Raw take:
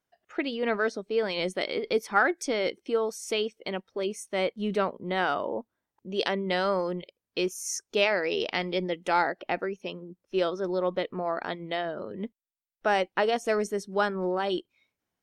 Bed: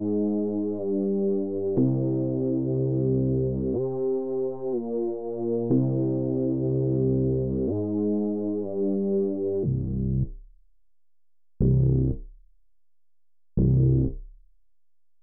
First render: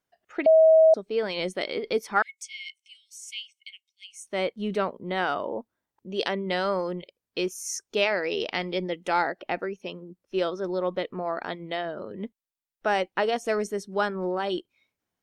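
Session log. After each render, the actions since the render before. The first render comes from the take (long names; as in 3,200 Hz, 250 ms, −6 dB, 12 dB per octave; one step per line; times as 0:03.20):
0:00.46–0:00.94: beep over 640 Hz −12.5 dBFS
0:02.22–0:04.26: Chebyshev high-pass with heavy ripple 2,100 Hz, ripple 9 dB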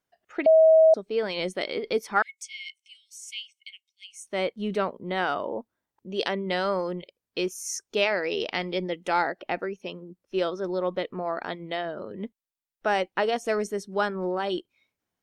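no processing that can be heard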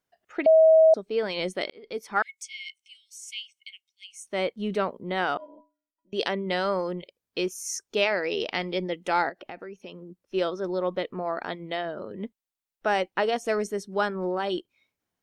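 0:01.70–0:02.30: fade in
0:05.37–0:06.13: stiff-string resonator 290 Hz, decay 0.36 s, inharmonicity 0.03
0:09.29–0:10.20: downward compressor 3 to 1, threshold −38 dBFS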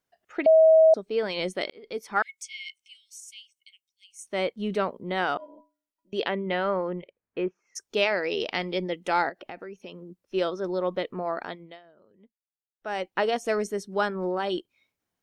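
0:03.20–0:04.19: parametric band 1,900 Hz −12 dB 2.7 octaves
0:06.19–0:07.75: low-pass filter 3,600 Hz → 1,800 Hz 24 dB per octave
0:11.34–0:13.20: duck −23 dB, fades 0.46 s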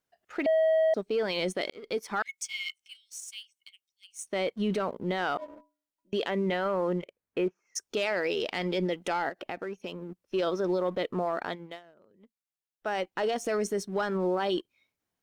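leveller curve on the samples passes 1
brickwall limiter −21 dBFS, peak gain reduction 10 dB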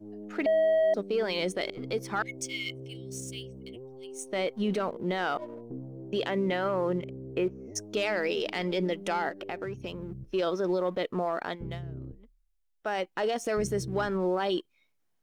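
mix in bed −18 dB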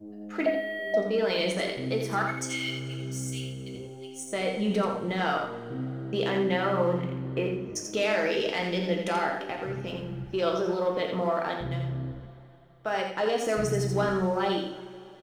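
on a send: single-tap delay 85 ms −6.5 dB
on the sum: coupled-rooms reverb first 0.53 s, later 3.5 s, from −18 dB, DRR 1.5 dB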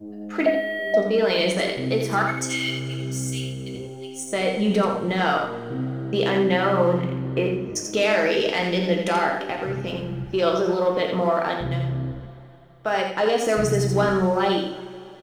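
level +6 dB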